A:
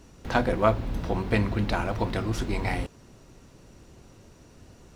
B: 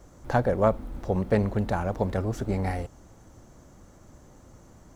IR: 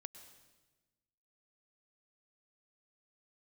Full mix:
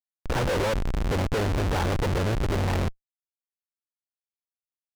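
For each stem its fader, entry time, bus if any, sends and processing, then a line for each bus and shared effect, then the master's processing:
−0.5 dB, 0.00 s, send −21.5 dB, automatic ducking −22 dB, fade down 1.70 s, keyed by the second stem
+1.5 dB, 22 ms, send −12 dB, no processing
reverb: on, RT60 1.2 s, pre-delay 98 ms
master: comb filter 2.2 ms, depth 86%; comparator with hysteresis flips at −28.5 dBFS; high-shelf EQ 8,800 Hz −11 dB

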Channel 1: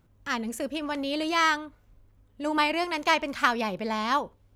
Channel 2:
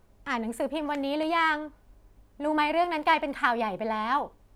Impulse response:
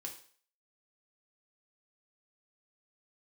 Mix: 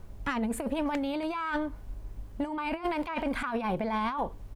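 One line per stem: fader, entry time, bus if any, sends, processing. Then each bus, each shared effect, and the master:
+1.0 dB, 0.00 s, no send, first-order pre-emphasis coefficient 0.8; treble cut that deepens with the level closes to 1,400 Hz, closed at −33.5 dBFS; bass and treble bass +5 dB, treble −13 dB
+2.5 dB, 0.9 ms, no send, low-shelf EQ 150 Hz +10 dB; compressor whose output falls as the input rises −30 dBFS, ratio −0.5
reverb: not used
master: downward compressor 2.5 to 1, threshold −28 dBFS, peak gain reduction 5 dB

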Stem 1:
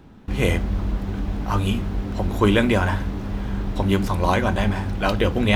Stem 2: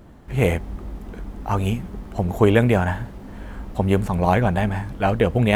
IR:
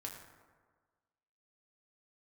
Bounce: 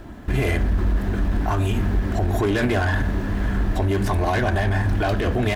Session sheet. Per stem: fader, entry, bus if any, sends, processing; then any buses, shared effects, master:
+2.0 dB, 0.00 s, no send, parametric band 1,700 Hz +12 dB 0.3 octaves; soft clipping −18 dBFS, distortion −10 dB
+2.5 dB, 0.3 ms, send −4 dB, comb filter 3 ms, depth 51%; downward compressor, threshold −22 dBFS, peak gain reduction 11.5 dB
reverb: on, RT60 1.5 s, pre-delay 5 ms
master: brickwall limiter −13 dBFS, peak gain reduction 9 dB

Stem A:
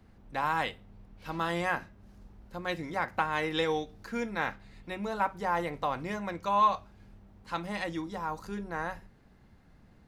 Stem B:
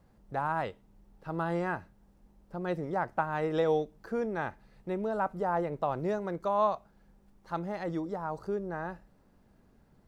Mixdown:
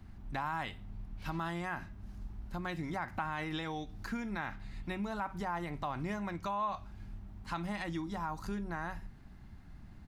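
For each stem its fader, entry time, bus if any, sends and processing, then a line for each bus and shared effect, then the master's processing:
+2.0 dB, 0.00 s, no send, low-shelf EQ 120 Hz +8.5 dB; brickwall limiter −24 dBFS, peak gain reduction 10.5 dB; downward compressor, threshold −37 dBFS, peak gain reduction 9 dB
−13.5 dB, 3 ms, no send, no processing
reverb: not used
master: parametric band 490 Hz −15 dB 0.35 octaves

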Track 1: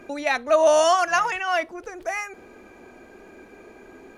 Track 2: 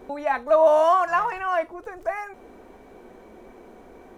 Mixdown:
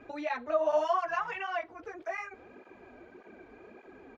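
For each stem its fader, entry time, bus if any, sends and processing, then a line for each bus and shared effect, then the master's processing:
−4.0 dB, 0.00 s, no send, downward compressor 4 to 1, threshold −26 dBFS, peak gain reduction 11.5 dB
−10.0 dB, 13 ms, no send, no processing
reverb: not used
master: low-pass filter 3,400 Hz 12 dB per octave; through-zero flanger with one copy inverted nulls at 1.7 Hz, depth 6.1 ms

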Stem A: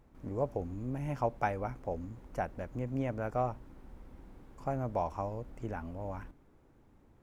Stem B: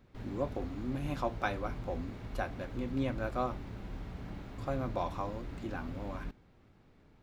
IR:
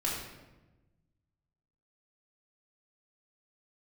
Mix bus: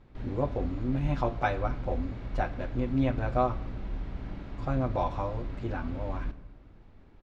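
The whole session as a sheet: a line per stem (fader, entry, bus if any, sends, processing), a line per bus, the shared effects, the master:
+0.5 dB, 0.00 s, no send, no processing
+0.5 dB, 4.5 ms, send −16 dB, no processing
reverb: on, RT60 1.1 s, pre-delay 3 ms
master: low-pass filter 4,800 Hz 12 dB per octave; low-shelf EQ 61 Hz +7 dB

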